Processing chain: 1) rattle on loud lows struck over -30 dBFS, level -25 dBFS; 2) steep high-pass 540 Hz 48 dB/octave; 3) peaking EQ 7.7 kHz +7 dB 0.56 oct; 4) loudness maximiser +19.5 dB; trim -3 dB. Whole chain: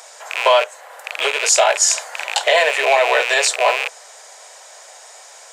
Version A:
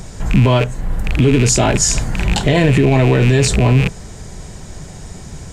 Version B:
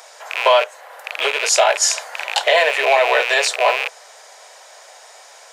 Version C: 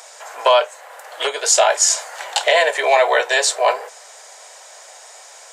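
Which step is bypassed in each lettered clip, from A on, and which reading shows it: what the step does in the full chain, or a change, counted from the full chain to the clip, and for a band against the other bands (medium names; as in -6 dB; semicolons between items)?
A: 2, 500 Hz band +4.5 dB; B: 3, 8 kHz band -3.0 dB; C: 1, 2 kHz band -2.5 dB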